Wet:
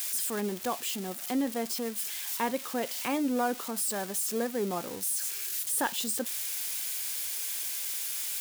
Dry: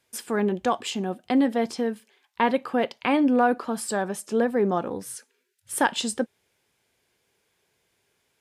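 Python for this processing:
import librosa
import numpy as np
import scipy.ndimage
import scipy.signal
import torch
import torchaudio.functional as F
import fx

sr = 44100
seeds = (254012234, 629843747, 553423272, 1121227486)

y = x + 0.5 * 10.0 ** (-18.5 / 20.0) * np.diff(np.sign(x), prepend=np.sign(x[:1]))
y = y * librosa.db_to_amplitude(-8.5)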